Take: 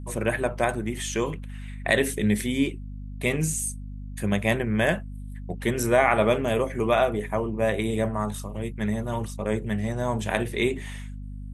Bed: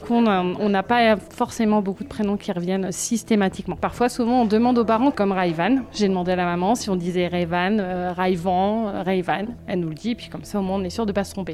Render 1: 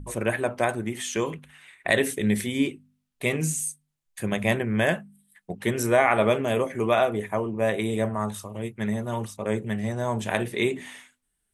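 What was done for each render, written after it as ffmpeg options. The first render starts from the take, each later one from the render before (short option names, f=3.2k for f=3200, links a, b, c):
-af "bandreject=f=50:t=h:w=4,bandreject=f=100:t=h:w=4,bandreject=f=150:t=h:w=4,bandreject=f=200:t=h:w=4,bandreject=f=250:t=h:w=4"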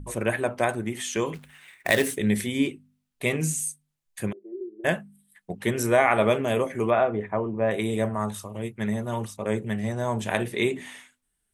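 -filter_complex "[0:a]asettb=1/sr,asplit=3[a][b][c];[a]atrim=end=1.344[d];[b]atrim=start=1.34:end=2.17,asetpts=PTS-STARTPTS,afade=t=in:d=0.004:c=qsin,afade=t=out:st=0.826:d=0.004:c=qsin,acrusher=bits=3:mode=log:mix=0:aa=0.000001[e];[c]atrim=start=2.166[f];[d][e]acrossfade=d=0.004:c1=hsin:c2=qsin[g];[g][f]acrossfade=d=0.004:c1=qsin:c2=hsin,asplit=3[h][i][j];[h]afade=t=out:st=4.31:d=0.02[k];[i]asuperpass=centerf=360:order=4:qfactor=7.8,afade=t=in:st=4.31:d=0.02,afade=t=out:st=4.84:d=0.02[l];[j]afade=t=in:st=4.84:d=0.02[m];[k][l][m]amix=inputs=3:normalize=0,asettb=1/sr,asplit=3[n][o][p];[n]atrim=end=6.904[q];[o]atrim=start=6.9:end=7.71,asetpts=PTS-STARTPTS,afade=t=in:d=0.004:c=qsin,afade=t=out:st=0.806:d=0.004:c=qsin,lowpass=1.9k[r];[p]atrim=start=7.706[s];[q][r]acrossfade=d=0.004:c1=hsin:c2=qsin[t];[t][s]acrossfade=d=0.004:c1=qsin:c2=hsin"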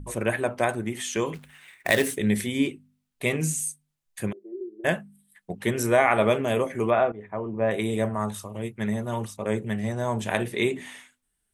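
-filter_complex "[0:a]asplit=2[a][b];[a]atrim=end=7.12,asetpts=PTS-STARTPTS,afade=t=out:st=7.116:d=0.004:c=hsin:silence=0.158489[c];[b]atrim=start=7.12,asetpts=PTS-STARTPTS,afade=t=in:d=0.51:silence=0.158489[d];[c][d]concat=n=2:v=0:a=1"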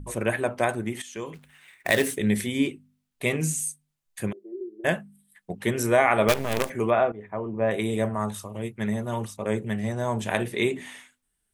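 -filter_complex "[0:a]asettb=1/sr,asplit=3[a][b][c];[a]atrim=end=6.284[d];[b]atrim=start=6.28:end=6.7,asetpts=PTS-STARTPTS,afade=t=in:d=0.004:c=qsin,afade=t=out:st=0.416:d=0.004:c=qsin,acrusher=bits=4:dc=4:mix=0:aa=0.000001[e];[c]atrim=start=6.696[f];[d][e]acrossfade=d=0.004:c1=hsin:c2=qsin[g];[g][f]acrossfade=d=0.004:c1=qsin:c2=hsin,asplit=2[h][i];[h]atrim=end=1.02,asetpts=PTS-STARTPTS,afade=t=out:st=1.016:d=0.004:c=hsin:silence=0.237137[j];[i]atrim=start=1.02,asetpts=PTS-STARTPTS,afade=t=in:d=0.98:silence=0.237137[k];[j][k]concat=n=2:v=0:a=1"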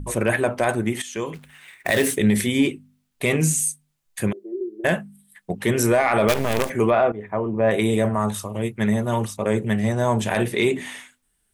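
-af "acontrast=78,alimiter=limit=-9.5dB:level=0:latency=1:release=24"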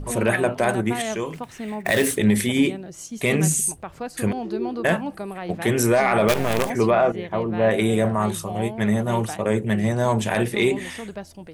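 -filter_complex "[1:a]volume=-12dB[a];[0:a][a]amix=inputs=2:normalize=0"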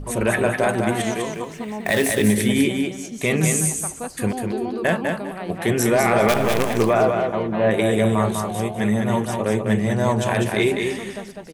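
-af "aecho=1:1:200|400|600:0.596|0.137|0.0315"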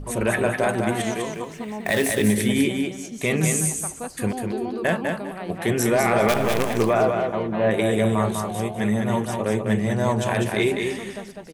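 -af "volume=-2dB"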